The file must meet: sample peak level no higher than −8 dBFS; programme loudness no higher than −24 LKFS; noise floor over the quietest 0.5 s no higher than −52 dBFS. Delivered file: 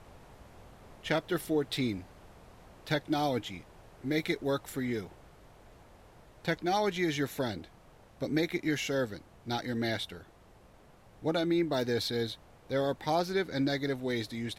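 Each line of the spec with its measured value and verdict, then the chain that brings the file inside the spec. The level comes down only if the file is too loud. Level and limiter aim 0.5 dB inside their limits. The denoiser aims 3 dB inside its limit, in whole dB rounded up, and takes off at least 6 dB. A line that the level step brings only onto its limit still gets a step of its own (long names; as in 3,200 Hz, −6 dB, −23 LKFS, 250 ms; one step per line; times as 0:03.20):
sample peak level −15.0 dBFS: in spec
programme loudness −32.5 LKFS: in spec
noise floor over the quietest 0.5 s −58 dBFS: in spec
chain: no processing needed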